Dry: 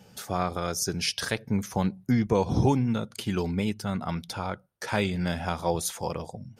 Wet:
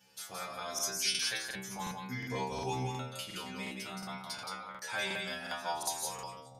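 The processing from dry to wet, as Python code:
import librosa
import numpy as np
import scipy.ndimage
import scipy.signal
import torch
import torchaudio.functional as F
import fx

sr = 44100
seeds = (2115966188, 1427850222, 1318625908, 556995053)

y = fx.tilt_shelf(x, sr, db=-8.5, hz=640.0)
y = fx.stiff_resonator(y, sr, f0_hz=63.0, decay_s=0.8, stiffness=0.002)
y = y + 10.0 ** (-3.5 / 20.0) * np.pad(y, (int(172 * sr / 1000.0), 0))[:len(y)]
y = fx.buffer_crackle(y, sr, first_s=0.74, period_s=0.36, block=2048, kind='repeat')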